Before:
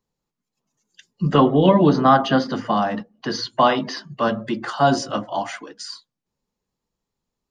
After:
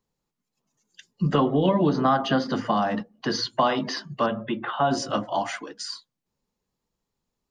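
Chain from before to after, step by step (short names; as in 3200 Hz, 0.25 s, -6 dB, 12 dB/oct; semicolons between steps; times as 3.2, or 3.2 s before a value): compressor 2.5:1, threshold -20 dBFS, peak gain reduction 7.5 dB; 4.26–4.91 rippled Chebyshev low-pass 3700 Hz, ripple 3 dB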